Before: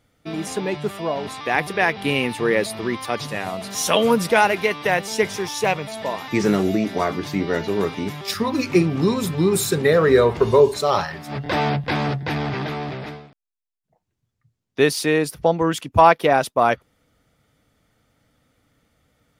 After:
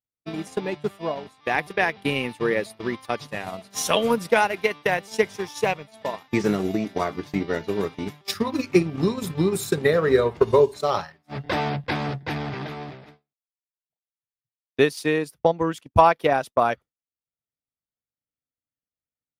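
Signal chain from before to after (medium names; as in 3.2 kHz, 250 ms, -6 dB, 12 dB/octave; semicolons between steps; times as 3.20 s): transient shaper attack +5 dB, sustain -7 dB; expander -25 dBFS; trim -5 dB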